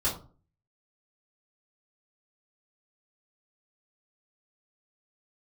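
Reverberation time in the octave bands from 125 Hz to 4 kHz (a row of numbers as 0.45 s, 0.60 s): 0.60 s, 0.50 s, 0.45 s, 0.40 s, 0.25 s, 0.25 s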